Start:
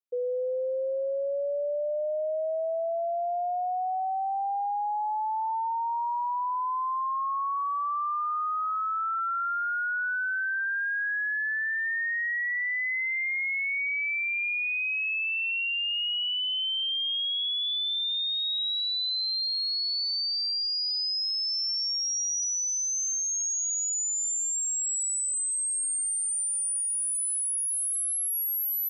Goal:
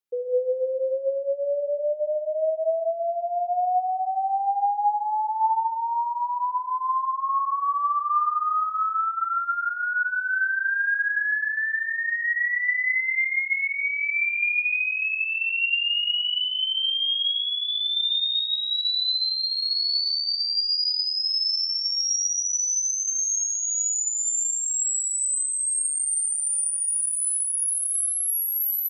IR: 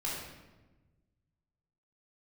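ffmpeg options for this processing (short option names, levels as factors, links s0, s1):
-filter_complex "[0:a]aecho=1:1:148|296|444:0.316|0.0569|0.0102,asplit=2[s0][s1];[1:a]atrim=start_sample=2205,afade=t=out:st=0.34:d=0.01,atrim=end_sample=15435[s2];[s1][s2]afir=irnorm=-1:irlink=0,volume=0.562[s3];[s0][s3]amix=inputs=2:normalize=0"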